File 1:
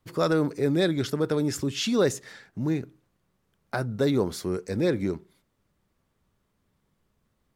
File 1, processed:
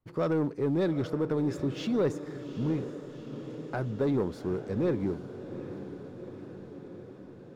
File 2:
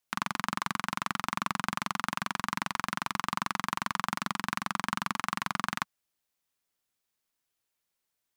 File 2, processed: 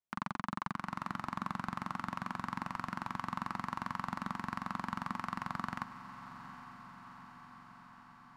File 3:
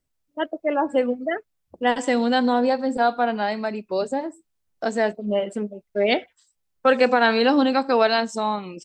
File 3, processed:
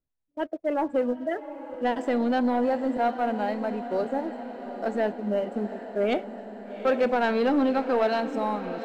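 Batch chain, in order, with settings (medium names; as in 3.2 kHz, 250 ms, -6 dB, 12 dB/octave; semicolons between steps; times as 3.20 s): low-pass 1.1 kHz 6 dB/octave; in parallel at -10 dB: saturation -18 dBFS; on the sum: waveshaping leveller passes 1; echo that smears into a reverb 798 ms, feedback 69%, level -12 dB; trim -8 dB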